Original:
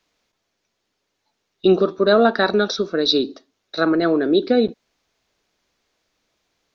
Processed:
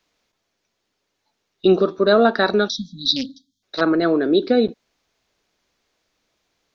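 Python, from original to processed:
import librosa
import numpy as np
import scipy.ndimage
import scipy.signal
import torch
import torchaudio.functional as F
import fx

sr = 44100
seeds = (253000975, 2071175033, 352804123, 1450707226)

y = fx.spec_erase(x, sr, start_s=2.69, length_s=0.94, low_hz=290.0, high_hz=3100.0)
y = fx.doppler_dist(y, sr, depth_ms=0.29, at=(3.16, 3.81))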